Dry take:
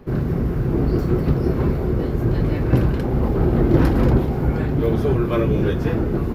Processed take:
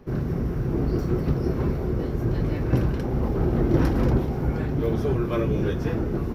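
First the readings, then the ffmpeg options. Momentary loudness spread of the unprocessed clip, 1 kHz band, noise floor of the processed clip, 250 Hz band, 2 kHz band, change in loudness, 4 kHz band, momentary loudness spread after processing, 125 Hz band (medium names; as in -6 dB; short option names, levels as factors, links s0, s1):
5 LU, -5.0 dB, -28 dBFS, -5.0 dB, -5.0 dB, -5.0 dB, -4.5 dB, 5 LU, -5.0 dB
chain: -af "equalizer=f=5700:t=o:w=0.2:g=8,volume=0.562"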